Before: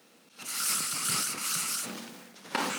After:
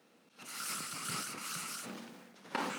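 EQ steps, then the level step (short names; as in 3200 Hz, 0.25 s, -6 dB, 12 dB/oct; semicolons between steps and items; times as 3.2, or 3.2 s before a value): high shelf 3200 Hz -8.5 dB; -4.5 dB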